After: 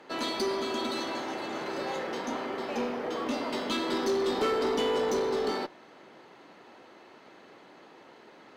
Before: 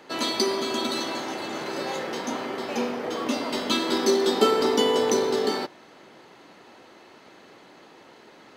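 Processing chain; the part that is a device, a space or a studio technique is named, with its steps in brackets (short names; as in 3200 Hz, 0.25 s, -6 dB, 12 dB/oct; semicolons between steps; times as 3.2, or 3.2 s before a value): tube preamp driven hard (tube stage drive 21 dB, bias 0.25; low shelf 150 Hz -6 dB; high shelf 4100 Hz -8.5 dB); gain -1 dB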